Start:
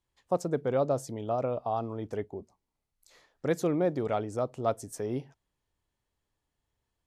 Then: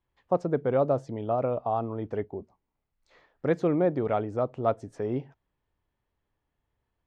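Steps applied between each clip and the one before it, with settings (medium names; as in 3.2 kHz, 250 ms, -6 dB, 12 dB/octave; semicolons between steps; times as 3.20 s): low-pass 2.5 kHz 12 dB/octave; trim +3 dB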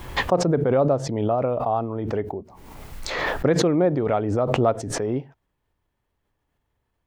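swell ahead of each attack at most 32 dB/s; trim +4 dB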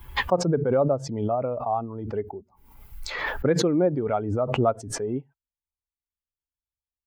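expander on every frequency bin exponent 1.5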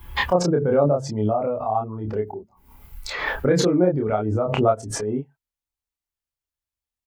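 doubling 28 ms -2 dB; trim +1 dB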